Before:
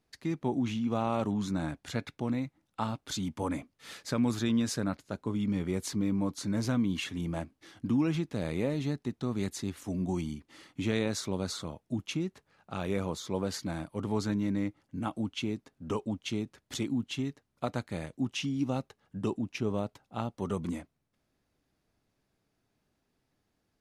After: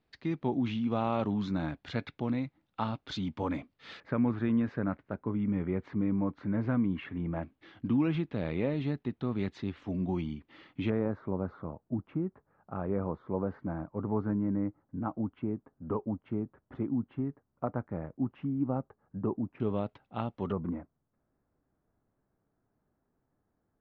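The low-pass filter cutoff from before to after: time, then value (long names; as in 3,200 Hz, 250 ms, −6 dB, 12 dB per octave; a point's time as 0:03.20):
low-pass filter 24 dB per octave
4,200 Hz
from 0:04.00 2,100 Hz
from 0:07.43 3,400 Hz
from 0:10.90 1,400 Hz
from 0:19.60 3,400 Hz
from 0:20.52 1,500 Hz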